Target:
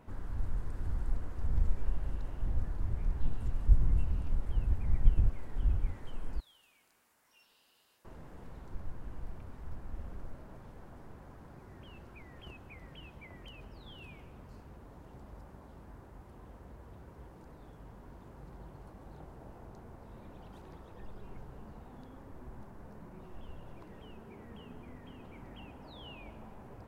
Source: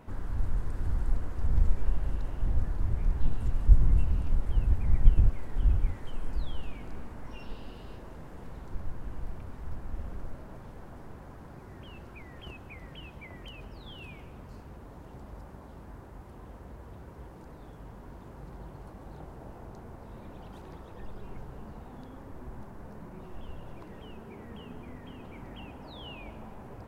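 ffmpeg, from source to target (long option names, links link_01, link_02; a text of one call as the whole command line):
ffmpeg -i in.wav -filter_complex "[0:a]asettb=1/sr,asplit=3[link_01][link_02][link_03];[link_01]atrim=end=6.404[link_04];[link_02]atrim=start=6.4:end=8.05,asetpts=PTS-STARTPTS,afade=type=in:duration=0.004:curve=qsin,afade=type=out:start_time=1.646:duration=0.004:curve=qsin,aderivative[link_05];[link_03]atrim=start=8.046[link_06];[link_04][link_05]acrossfade=duration=0.004:curve1=hsin:curve2=qsin[link_07];[link_07][link_06]acrossfade=duration=0.004:curve1=qsin:curve2=hsin,volume=-5dB" out.wav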